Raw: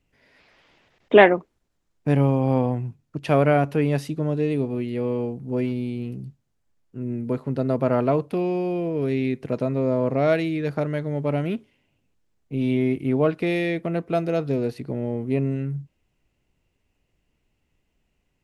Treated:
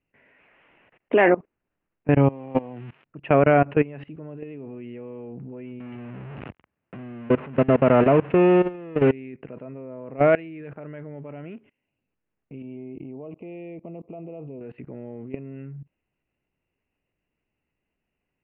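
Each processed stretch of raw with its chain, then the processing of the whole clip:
2.29–3.04 s: zero-crossing glitches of -22 dBFS + high-pass 140 Hz
5.80–9.12 s: jump at every zero crossing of -23.5 dBFS + high-pass 61 Hz 24 dB/octave + bass shelf 120 Hz +4.5 dB
12.62–14.61 s: peaking EQ 3.9 kHz -13.5 dB 0.68 oct + compression 2:1, threshold -33 dBFS + Butterworth band-stop 1.6 kHz, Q 1
whole clip: Chebyshev low-pass 2.8 kHz, order 5; bass shelf 110 Hz -11 dB; level held to a coarse grid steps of 22 dB; trim +6.5 dB

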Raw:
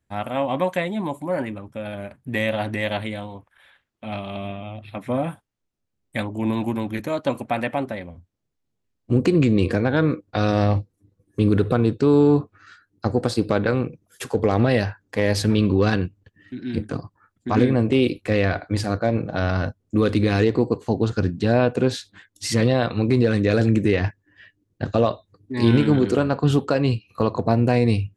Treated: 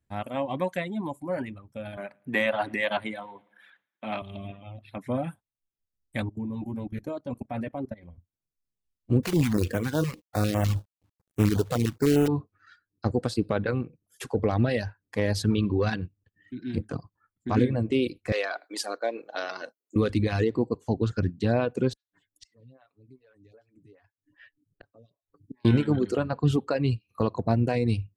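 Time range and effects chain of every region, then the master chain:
1.97–4.22 s: high-pass 150 Hz 24 dB/octave + peaking EQ 1.3 kHz +8 dB 2.6 oct + feedback delay 111 ms, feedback 54%, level -20 dB
6.22–8.03 s: tilt shelf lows +5.5 dB, about 780 Hz + comb of notches 170 Hz + level held to a coarse grid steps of 13 dB
9.23–12.28 s: companded quantiser 4-bit + step-sequenced notch 9.9 Hz 300–4500 Hz
18.32–19.96 s: high-pass 370 Hz 24 dB/octave + treble shelf 4 kHz +10 dB
21.93–25.65 s: comb 7.1 ms, depth 57% + inverted gate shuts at -24 dBFS, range -30 dB + lamp-driven phase shifter 2.5 Hz
whole clip: bass shelf 240 Hz +4.5 dB; reverb removal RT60 1.2 s; trim -6 dB

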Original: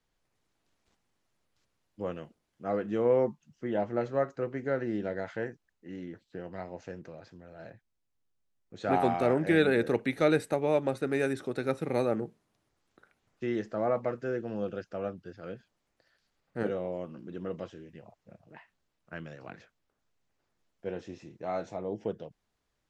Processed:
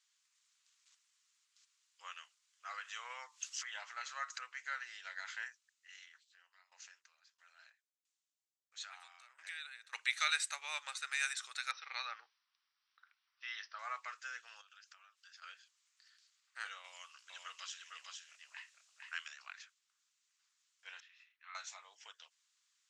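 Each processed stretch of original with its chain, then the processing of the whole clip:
2.78–4.39 s: tone controls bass -12 dB, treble +1 dB + upward compressor, threshold -29 dBFS
6.05–9.93 s: compression 2:1, threshold -39 dBFS + sawtooth tremolo in dB decaying 1.5 Hz, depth 18 dB
11.71–13.79 s: Chebyshev low-pass 5.8 kHz, order 8 + tape noise reduction on one side only decoder only
14.61–15.42 s: high-pass 750 Hz + compression 4:1, threshold -54 dBFS
16.84–19.28 s: treble shelf 2.7 kHz +9 dB + delay 456 ms -3.5 dB
21.00–21.55 s: high-pass 1.3 kHz 24 dB/octave + distance through air 490 m
whole clip: Chebyshev band-pass 1.1–7.5 kHz, order 3; differentiator; trim +13 dB

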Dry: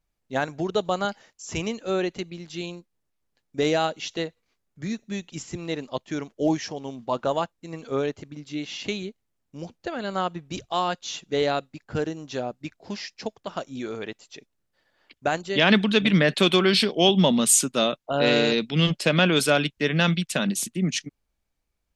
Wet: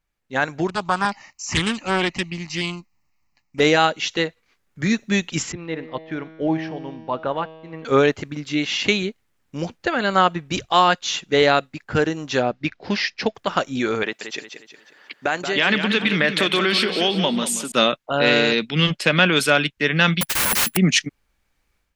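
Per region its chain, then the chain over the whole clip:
0.67–3.60 s: static phaser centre 2.3 kHz, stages 8 + loudspeaker Doppler distortion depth 0.57 ms
5.52–7.85 s: median filter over 5 samples + distance through air 270 m + feedback comb 160 Hz, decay 1.9 s, mix 70%
12.42–13.35 s: low-pass 5.3 kHz 24 dB/octave + peaking EQ 970 Hz -2.5 dB
14.03–17.72 s: high-pass 190 Hz + compression 2.5:1, threshold -33 dBFS + modulated delay 180 ms, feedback 42%, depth 59 cents, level -8.5 dB
20.21–20.77 s: integer overflow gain 25 dB + careless resampling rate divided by 4×, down none, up zero stuff
whole clip: peaking EQ 1.8 kHz +7 dB 1.7 oct; band-stop 660 Hz, Q 15; level rider; trim -1 dB

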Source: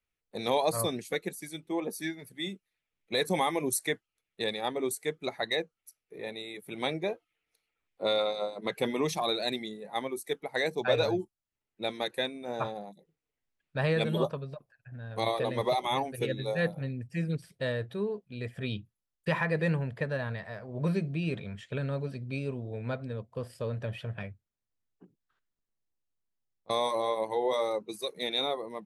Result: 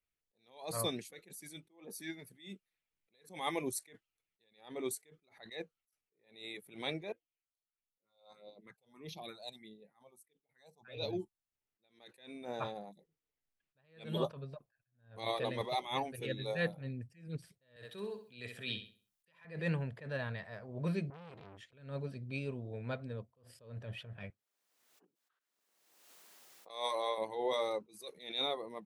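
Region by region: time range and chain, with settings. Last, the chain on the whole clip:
7.12–11.13 s: phase shifter stages 4, 1.6 Hz, lowest notch 290–1600 Hz + upward expansion, over -48 dBFS
17.76–19.45 s: tilt EQ +2.5 dB/octave + flutter echo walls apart 11.2 m, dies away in 0.39 s + three bands compressed up and down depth 40%
21.10–21.73 s: band-stop 7.7 kHz, Q 10 + compression 8:1, threshold -36 dBFS + transformer saturation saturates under 1.5 kHz
24.30–27.18 s: high-pass 440 Hz + swell ahead of each attack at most 44 dB/s
whole clip: dynamic bell 3 kHz, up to +5 dB, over -47 dBFS, Q 1; attacks held to a fixed rise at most 130 dB/s; trim -5.5 dB

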